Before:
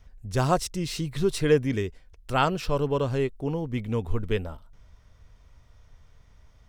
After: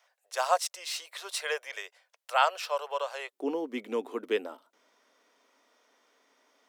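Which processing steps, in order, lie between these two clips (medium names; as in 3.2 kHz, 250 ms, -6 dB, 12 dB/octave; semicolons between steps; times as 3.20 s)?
steep high-pass 560 Hz 48 dB/octave, from 3.32 s 260 Hz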